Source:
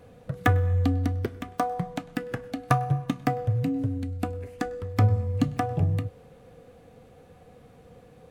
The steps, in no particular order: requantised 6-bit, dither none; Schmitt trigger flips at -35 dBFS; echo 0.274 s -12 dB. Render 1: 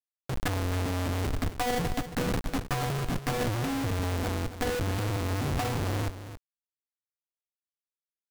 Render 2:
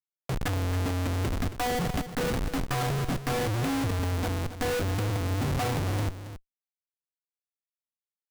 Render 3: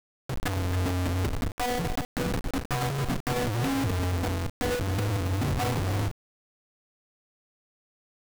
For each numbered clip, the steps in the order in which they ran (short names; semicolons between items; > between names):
Schmitt trigger > requantised > echo; requantised > Schmitt trigger > echo; Schmitt trigger > echo > requantised